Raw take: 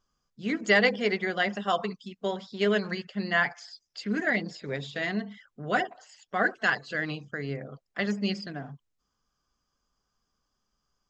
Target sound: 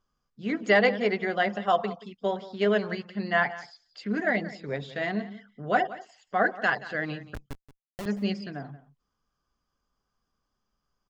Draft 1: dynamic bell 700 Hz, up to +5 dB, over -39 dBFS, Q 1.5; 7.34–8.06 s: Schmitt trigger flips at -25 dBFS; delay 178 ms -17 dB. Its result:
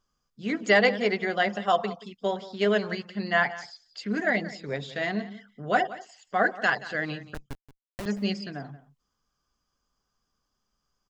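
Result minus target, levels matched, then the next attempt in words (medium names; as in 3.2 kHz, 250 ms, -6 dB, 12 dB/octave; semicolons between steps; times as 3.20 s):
4 kHz band +3.0 dB
dynamic bell 700 Hz, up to +5 dB, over -39 dBFS, Q 1.5; low-pass 3 kHz 6 dB/octave; 7.34–8.06 s: Schmitt trigger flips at -25 dBFS; delay 178 ms -17 dB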